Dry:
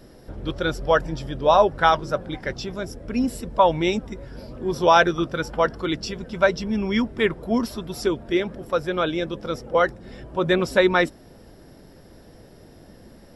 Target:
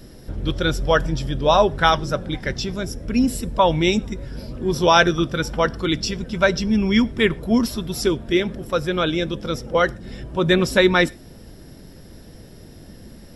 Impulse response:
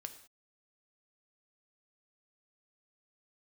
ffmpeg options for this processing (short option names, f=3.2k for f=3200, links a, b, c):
-filter_complex "[0:a]equalizer=f=780:w=0.46:g=-8.5,bandreject=f=4.6k:w=28,asplit=2[a][b];[1:a]atrim=start_sample=2205,afade=t=out:st=0.18:d=0.01,atrim=end_sample=8379[c];[b][c]afir=irnorm=-1:irlink=0,volume=-7.5dB[d];[a][d]amix=inputs=2:normalize=0,volume=6dB"